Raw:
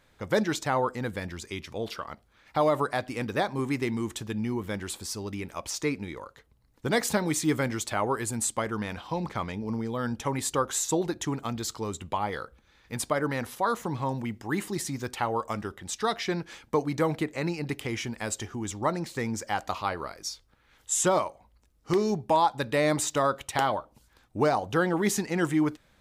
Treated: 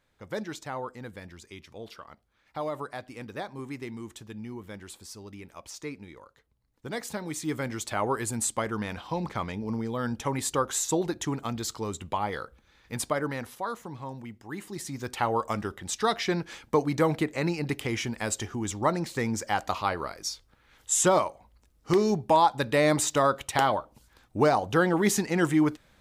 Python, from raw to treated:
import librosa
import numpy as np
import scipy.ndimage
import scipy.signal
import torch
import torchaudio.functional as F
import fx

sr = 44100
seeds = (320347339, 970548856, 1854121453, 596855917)

y = fx.gain(x, sr, db=fx.line((7.13, -9.0), (8.06, 0.0), (13.04, 0.0), (13.87, -8.5), (14.59, -8.5), (15.25, 2.0)))